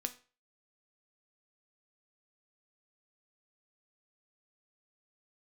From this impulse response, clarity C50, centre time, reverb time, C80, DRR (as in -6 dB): 16.0 dB, 6 ms, 0.35 s, 20.5 dB, 7.5 dB